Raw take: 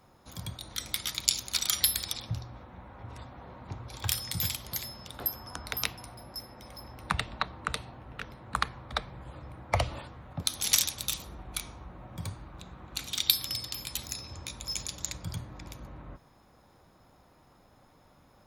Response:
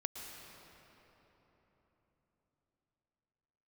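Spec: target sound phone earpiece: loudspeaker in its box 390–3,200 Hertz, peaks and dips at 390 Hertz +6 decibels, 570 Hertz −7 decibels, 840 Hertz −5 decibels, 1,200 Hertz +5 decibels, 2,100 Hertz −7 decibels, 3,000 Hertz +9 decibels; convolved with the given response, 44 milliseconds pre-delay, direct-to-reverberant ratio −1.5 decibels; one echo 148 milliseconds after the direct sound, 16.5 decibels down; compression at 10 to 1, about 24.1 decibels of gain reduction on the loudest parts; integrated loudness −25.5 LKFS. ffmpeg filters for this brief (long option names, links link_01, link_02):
-filter_complex "[0:a]acompressor=threshold=-45dB:ratio=10,aecho=1:1:148:0.15,asplit=2[link_01][link_02];[1:a]atrim=start_sample=2205,adelay=44[link_03];[link_02][link_03]afir=irnorm=-1:irlink=0,volume=1.5dB[link_04];[link_01][link_04]amix=inputs=2:normalize=0,highpass=390,equalizer=frequency=390:width_type=q:width=4:gain=6,equalizer=frequency=570:width_type=q:width=4:gain=-7,equalizer=frequency=840:width_type=q:width=4:gain=-5,equalizer=frequency=1200:width_type=q:width=4:gain=5,equalizer=frequency=2100:width_type=q:width=4:gain=-7,equalizer=frequency=3000:width_type=q:width=4:gain=9,lowpass=frequency=3200:width=0.5412,lowpass=frequency=3200:width=1.3066,volume=25.5dB"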